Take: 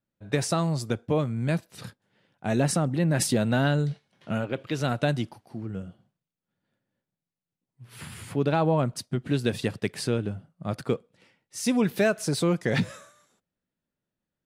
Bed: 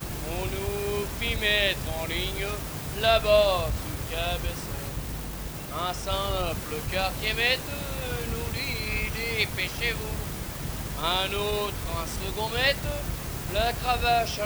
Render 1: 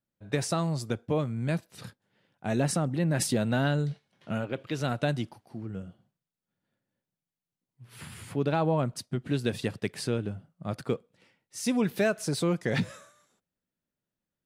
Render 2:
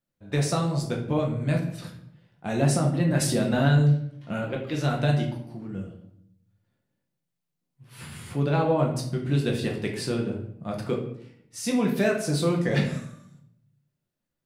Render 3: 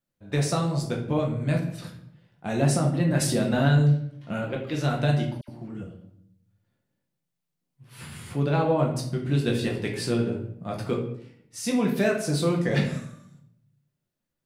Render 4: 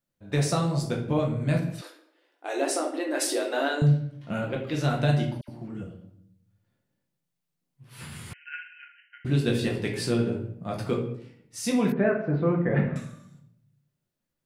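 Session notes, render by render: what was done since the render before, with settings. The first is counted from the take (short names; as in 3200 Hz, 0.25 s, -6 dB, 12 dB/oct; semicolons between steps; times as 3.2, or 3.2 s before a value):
gain -3 dB
shoebox room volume 130 m³, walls mixed, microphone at 0.86 m
5.41–5.83 dispersion lows, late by 72 ms, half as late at 1700 Hz; 9.46–11.2 doubler 17 ms -5.5 dB
1.81–3.82 brick-wall FIR high-pass 270 Hz; 8.33–9.25 brick-wall FIR band-pass 1400–3100 Hz; 11.92–12.96 LPF 1900 Hz 24 dB/oct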